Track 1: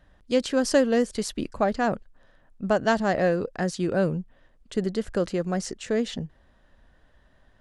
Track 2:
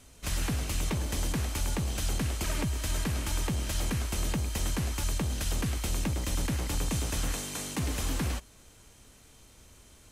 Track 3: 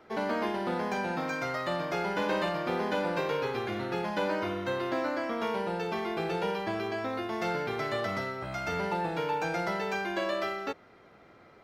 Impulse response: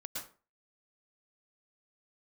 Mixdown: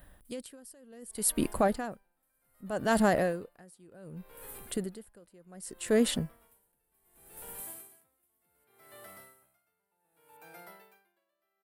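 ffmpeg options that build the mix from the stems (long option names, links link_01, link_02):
-filter_complex "[0:a]alimiter=limit=-17dB:level=0:latency=1:release=10,volume=2.5dB,asplit=2[link_01][link_02];[1:a]acompressor=threshold=-39dB:ratio=2,highpass=96,alimiter=level_in=7.5dB:limit=-24dB:level=0:latency=1:release=425,volume=-7.5dB,adelay=250,volume=-13.5dB[link_03];[2:a]lowshelf=frequency=350:gain=-7.5,adelay=1000,volume=-17.5dB[link_04];[link_02]apad=whole_len=457173[link_05];[link_03][link_05]sidechaincompress=threshold=-45dB:ratio=8:attack=16:release=210[link_06];[link_01][link_06][link_04]amix=inputs=3:normalize=0,aexciter=amount=14.2:drive=6.3:freq=9000,aeval=exprs='val(0)*pow(10,-33*(0.5-0.5*cos(2*PI*0.66*n/s))/20)':channel_layout=same"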